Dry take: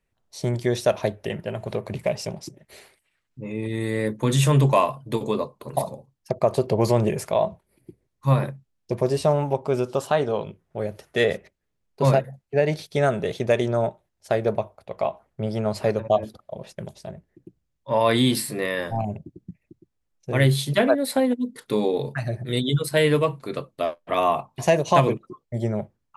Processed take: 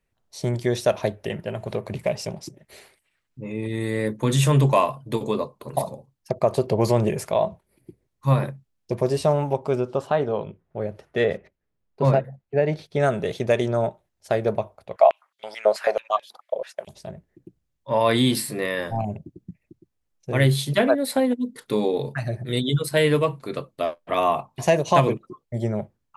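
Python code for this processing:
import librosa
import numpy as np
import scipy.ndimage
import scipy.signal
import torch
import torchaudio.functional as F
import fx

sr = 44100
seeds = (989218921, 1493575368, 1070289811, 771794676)

y = fx.lowpass(x, sr, hz=1900.0, slope=6, at=(9.75, 13.0))
y = fx.filter_held_highpass(y, sr, hz=9.2, low_hz=520.0, high_hz=3500.0, at=(14.95, 16.87), fade=0.02)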